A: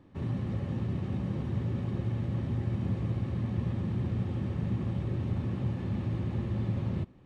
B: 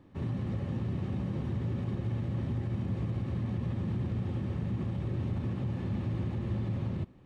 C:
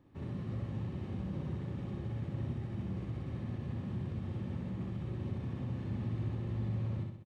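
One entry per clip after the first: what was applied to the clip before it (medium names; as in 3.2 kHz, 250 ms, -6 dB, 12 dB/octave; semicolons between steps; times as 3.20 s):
peak limiter -25 dBFS, peak gain reduction 5 dB
feedback delay 63 ms, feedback 52%, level -3.5 dB; trim -7 dB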